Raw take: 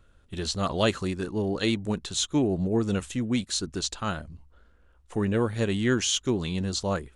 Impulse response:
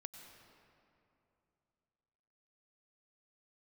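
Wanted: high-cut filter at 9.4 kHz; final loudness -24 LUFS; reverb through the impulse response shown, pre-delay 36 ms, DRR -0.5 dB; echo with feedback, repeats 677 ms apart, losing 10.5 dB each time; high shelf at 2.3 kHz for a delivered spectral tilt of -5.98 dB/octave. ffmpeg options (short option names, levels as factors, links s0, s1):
-filter_complex "[0:a]lowpass=9400,highshelf=f=2300:g=-8.5,aecho=1:1:677|1354|2031:0.299|0.0896|0.0269,asplit=2[s0][s1];[1:a]atrim=start_sample=2205,adelay=36[s2];[s1][s2]afir=irnorm=-1:irlink=0,volume=1.88[s3];[s0][s3]amix=inputs=2:normalize=0,volume=1.12"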